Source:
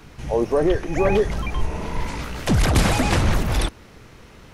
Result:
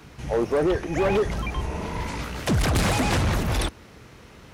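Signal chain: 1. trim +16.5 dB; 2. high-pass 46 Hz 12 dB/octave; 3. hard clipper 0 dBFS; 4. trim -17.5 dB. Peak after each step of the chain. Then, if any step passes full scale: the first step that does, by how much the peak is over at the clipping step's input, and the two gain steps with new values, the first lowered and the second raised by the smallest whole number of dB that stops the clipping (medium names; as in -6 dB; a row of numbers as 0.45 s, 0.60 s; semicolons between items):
+10.5 dBFS, +9.5 dBFS, 0.0 dBFS, -17.5 dBFS; step 1, 9.5 dB; step 1 +6.5 dB, step 4 -7.5 dB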